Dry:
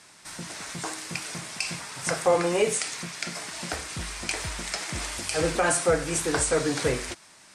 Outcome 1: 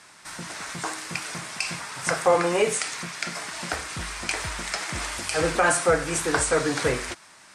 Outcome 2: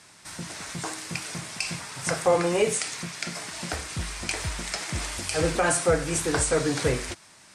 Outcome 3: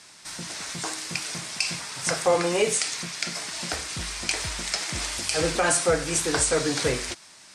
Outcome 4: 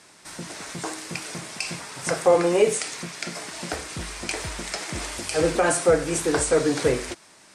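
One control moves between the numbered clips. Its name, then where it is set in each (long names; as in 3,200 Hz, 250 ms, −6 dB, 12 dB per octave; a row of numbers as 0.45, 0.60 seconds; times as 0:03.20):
parametric band, centre frequency: 1,300, 88, 4,800, 390 Hertz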